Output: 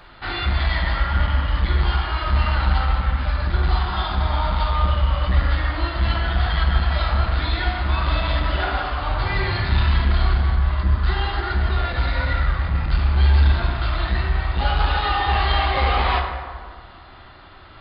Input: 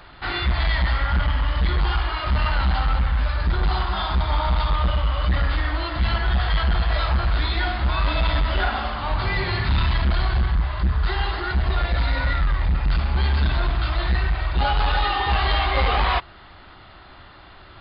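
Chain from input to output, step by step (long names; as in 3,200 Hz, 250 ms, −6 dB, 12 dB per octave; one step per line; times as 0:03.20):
dense smooth reverb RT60 1.8 s, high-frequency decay 0.5×, DRR 2 dB
level −1.5 dB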